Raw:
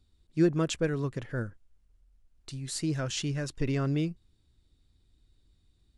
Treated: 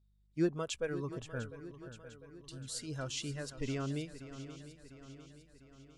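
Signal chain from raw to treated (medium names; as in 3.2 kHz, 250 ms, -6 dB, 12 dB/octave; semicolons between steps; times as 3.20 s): spectral noise reduction 12 dB; mains buzz 50 Hz, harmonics 4, -62 dBFS -9 dB/octave; bass shelf 160 Hz -4 dB; on a send: shuffle delay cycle 700 ms, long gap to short 3:1, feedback 52%, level -13 dB; on the sum: trim -5.5 dB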